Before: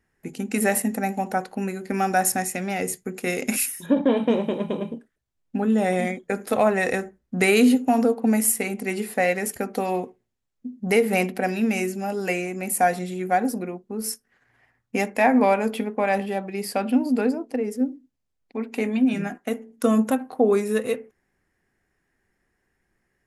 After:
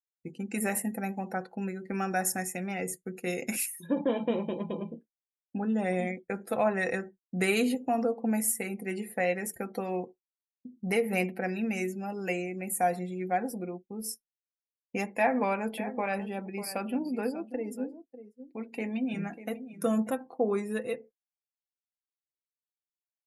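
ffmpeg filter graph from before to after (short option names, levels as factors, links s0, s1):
-filter_complex "[0:a]asettb=1/sr,asplit=3[s0][s1][s2];[s0]atrim=end=15.174[s3];[s1]atrim=start=15.17:end=20.09,asetpts=PTS-STARTPTS,afade=t=in:d=0.004:c=qsin,afade=t=out:st=4.916:d=0.004:c=qsin,highshelf=f=9300:g=6,aecho=1:1:593:0.224,atrim=end_sample=216972[s4];[s2]atrim=start=20.086[s5];[s3][s4]acrossfade=d=0.004:c1=hsin:c2=qsin[s6];[s6][s5]acrossfade=d=0.004:c1=qsin:c2=hsin,agate=range=0.0224:threshold=0.0141:ratio=3:detection=peak,afftdn=nr=19:nf=-42,aecho=1:1:5.9:0.42,volume=0.398"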